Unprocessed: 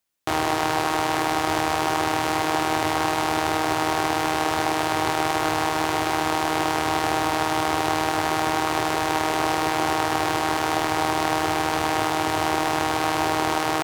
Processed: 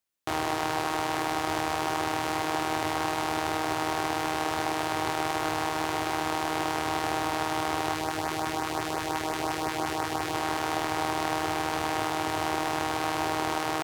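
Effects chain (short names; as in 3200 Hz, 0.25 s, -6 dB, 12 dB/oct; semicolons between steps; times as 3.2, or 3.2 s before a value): 7.93–10.34 LFO notch saw up 5.7 Hz 440–3900 Hz; gain -6 dB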